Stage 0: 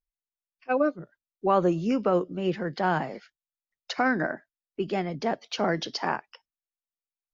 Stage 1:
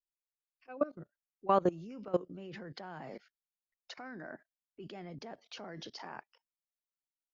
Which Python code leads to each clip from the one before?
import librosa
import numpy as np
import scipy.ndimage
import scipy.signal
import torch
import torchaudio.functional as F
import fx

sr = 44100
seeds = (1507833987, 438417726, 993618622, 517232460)

y = fx.level_steps(x, sr, step_db=21)
y = F.gain(torch.from_numpy(y), -3.5).numpy()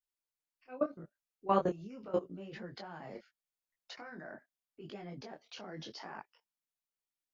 y = fx.detune_double(x, sr, cents=28)
y = F.gain(torch.from_numpy(y), 3.0).numpy()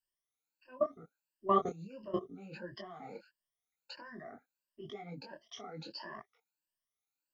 y = fx.spec_ripple(x, sr, per_octave=1.3, drift_hz=1.5, depth_db=24)
y = F.gain(torch.from_numpy(y), -5.5).numpy()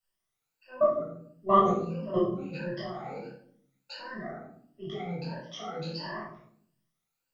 y = fx.room_shoebox(x, sr, seeds[0], volume_m3=970.0, walls='furnished', distance_m=6.7)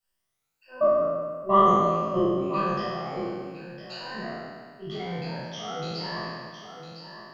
y = fx.spec_trails(x, sr, decay_s=1.8)
y = y + 10.0 ** (-10.0 / 20.0) * np.pad(y, (int(1006 * sr / 1000.0), 0))[:len(y)]